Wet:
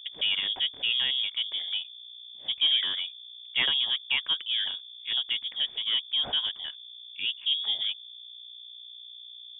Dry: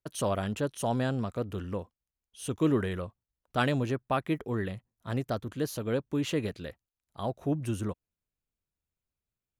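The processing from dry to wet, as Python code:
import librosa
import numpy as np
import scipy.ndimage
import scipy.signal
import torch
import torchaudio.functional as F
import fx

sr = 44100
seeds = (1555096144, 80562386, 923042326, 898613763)

p1 = fx.env_lowpass(x, sr, base_hz=1200.0, full_db=-27.5)
p2 = np.repeat(scipy.signal.resample_poly(p1, 1, 6), 6)[:len(p1)]
p3 = 10.0 ** (-25.5 / 20.0) * np.tanh(p2 / 10.0 ** (-25.5 / 20.0))
p4 = p2 + F.gain(torch.from_numpy(p3), -5.0).numpy()
p5 = fx.add_hum(p4, sr, base_hz=60, snr_db=16)
p6 = fx.freq_invert(p5, sr, carrier_hz=3500)
y = F.gain(torch.from_numpy(p6), -1.5).numpy()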